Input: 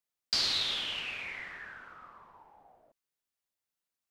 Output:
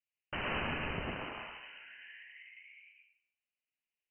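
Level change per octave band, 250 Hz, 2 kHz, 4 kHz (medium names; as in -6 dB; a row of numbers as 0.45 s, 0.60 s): +10.0 dB, -0.5 dB, -15.0 dB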